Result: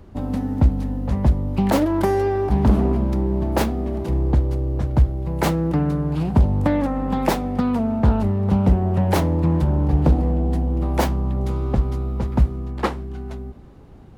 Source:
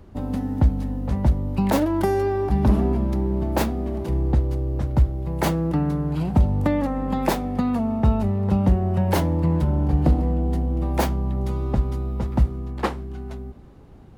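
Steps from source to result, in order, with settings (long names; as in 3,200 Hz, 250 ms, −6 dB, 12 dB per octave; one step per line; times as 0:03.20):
highs frequency-modulated by the lows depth 0.4 ms
level +2 dB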